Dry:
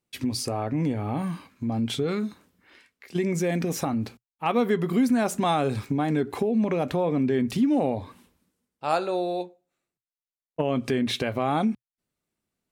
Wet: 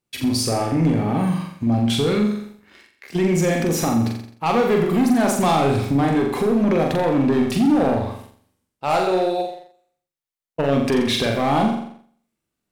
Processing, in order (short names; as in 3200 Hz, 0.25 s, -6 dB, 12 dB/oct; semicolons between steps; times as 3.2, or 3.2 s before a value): hard clip -20 dBFS, distortion -15 dB; flutter echo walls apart 7.4 m, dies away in 0.66 s; sample leveller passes 1; gain +2.5 dB